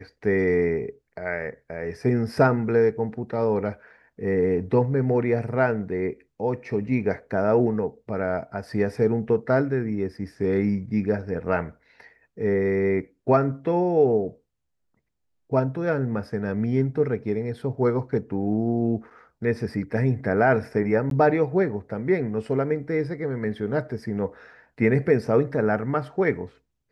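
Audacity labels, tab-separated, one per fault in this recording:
21.100000	21.110000	drop-out 12 ms

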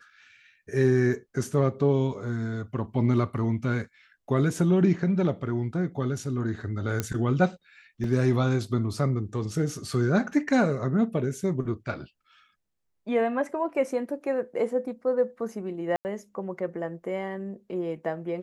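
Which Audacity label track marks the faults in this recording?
7.000000	7.000000	click −12 dBFS
8.040000	8.040000	drop-out 2.5 ms
15.960000	16.050000	drop-out 89 ms

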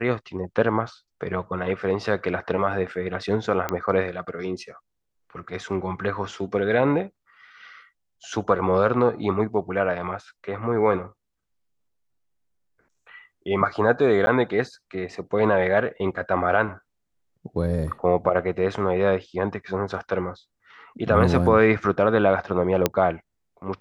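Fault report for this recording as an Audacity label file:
3.690000	3.690000	click −11 dBFS
14.260000	14.270000	drop-out 10 ms
22.860000	22.860000	click −4 dBFS

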